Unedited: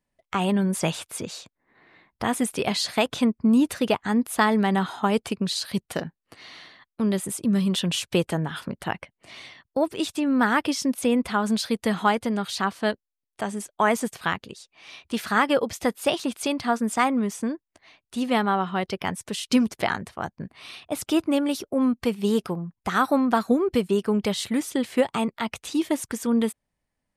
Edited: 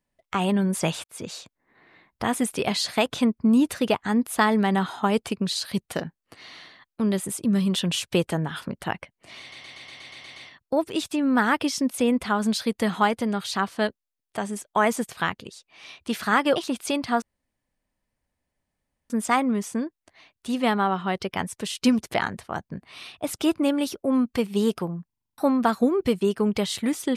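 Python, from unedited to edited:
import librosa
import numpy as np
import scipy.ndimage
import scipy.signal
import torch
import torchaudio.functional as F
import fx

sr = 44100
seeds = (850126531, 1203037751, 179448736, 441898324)

y = fx.edit(x, sr, fx.fade_in_span(start_s=1.04, length_s=0.25),
    fx.stutter(start_s=9.4, slice_s=0.12, count=9),
    fx.cut(start_s=15.6, length_s=0.52),
    fx.insert_room_tone(at_s=16.78, length_s=1.88),
    fx.stutter_over(start_s=22.74, slice_s=0.04, count=8), tone=tone)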